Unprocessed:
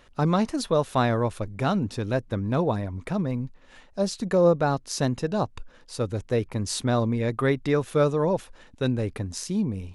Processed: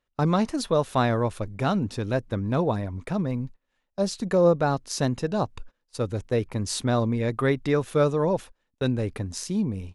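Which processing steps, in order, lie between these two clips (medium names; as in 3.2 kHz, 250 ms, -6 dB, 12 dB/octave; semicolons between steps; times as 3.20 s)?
gate -38 dBFS, range -25 dB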